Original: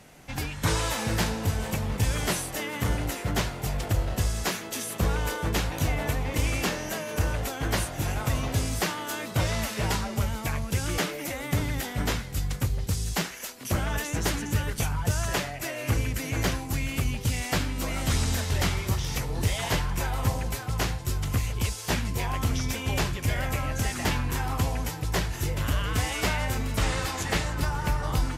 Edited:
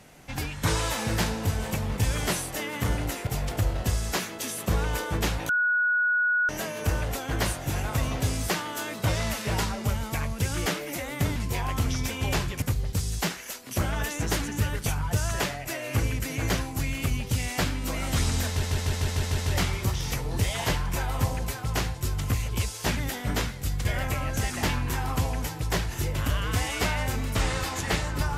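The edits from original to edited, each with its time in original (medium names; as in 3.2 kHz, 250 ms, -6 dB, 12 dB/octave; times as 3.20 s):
3.27–3.59 s: delete
5.81–6.81 s: bleep 1.46 kHz -20.5 dBFS
11.68–12.56 s: swap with 22.01–23.27 s
18.42 s: stutter 0.15 s, 7 plays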